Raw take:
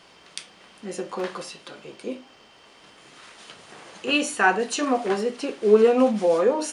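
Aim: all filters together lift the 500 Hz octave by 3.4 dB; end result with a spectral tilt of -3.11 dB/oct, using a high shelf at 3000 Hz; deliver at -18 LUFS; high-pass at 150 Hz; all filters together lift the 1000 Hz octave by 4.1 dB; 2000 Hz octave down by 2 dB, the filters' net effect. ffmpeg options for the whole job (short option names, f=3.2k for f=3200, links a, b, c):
-af "highpass=150,equalizer=f=500:t=o:g=3,equalizer=f=1k:t=o:g=5.5,equalizer=f=2k:t=o:g=-8.5,highshelf=f=3k:g=6,volume=1dB"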